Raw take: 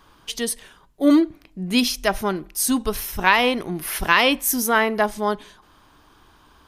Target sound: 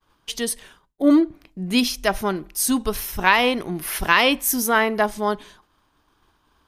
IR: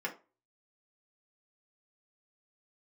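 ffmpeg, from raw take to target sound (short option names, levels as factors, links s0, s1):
-filter_complex "[0:a]agate=range=0.0224:threshold=0.00562:ratio=3:detection=peak,asettb=1/sr,asplit=3[s0][s1][s2];[s0]atrim=end=1.024[s3];[s1]atrim=start=1.02:end=2.04,asetpts=PTS-STARTPTS,afade=t=in:d=0.004:c=qsin,afade=t=out:st=1.016:d=0.004:c=qsin,adynamicequalizer=threshold=0.0141:dfrequency=1700:dqfactor=0.7:tfrequency=1700:tqfactor=0.7:attack=5:release=100:ratio=0.375:range=3:mode=cutabove:tftype=highshelf[s4];[s2]atrim=start=2.036[s5];[s3][s4]acrossfade=d=0.004:c1=hsin:c2=qsin[s6];[s6][s5]acrossfade=d=0.004:c1=qsin:c2=hsin"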